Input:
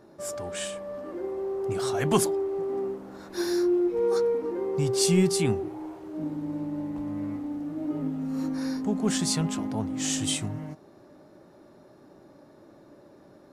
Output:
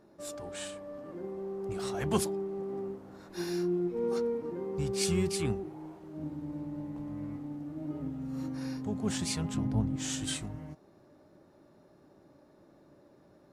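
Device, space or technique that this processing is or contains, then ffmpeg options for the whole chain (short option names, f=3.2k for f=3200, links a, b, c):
octave pedal: -filter_complex "[0:a]asplit=2[a][b];[b]asetrate=22050,aresample=44100,atempo=2,volume=-8dB[c];[a][c]amix=inputs=2:normalize=0,asettb=1/sr,asplit=3[d][e][f];[d]atrim=end=9.544[g];[e]atrim=start=9.54:end=9.96,asetpts=PTS-STARTPTS,afade=t=in:d=0.004:c=qsin,afade=t=out:st=0.416:d=0.004:c=qsin,bass=f=250:g=11,treble=f=4k:g=-3[h];[f]atrim=start=9.956[i];[g][h]acrossfade=d=0.004:c1=hsin:c2=qsin[j];[j][i]acrossfade=d=0.004:c1=qsin:c2=hsin,volume=-7.5dB"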